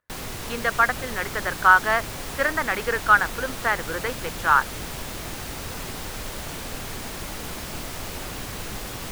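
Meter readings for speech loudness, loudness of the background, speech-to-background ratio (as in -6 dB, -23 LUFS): -22.0 LUFS, -33.0 LUFS, 11.0 dB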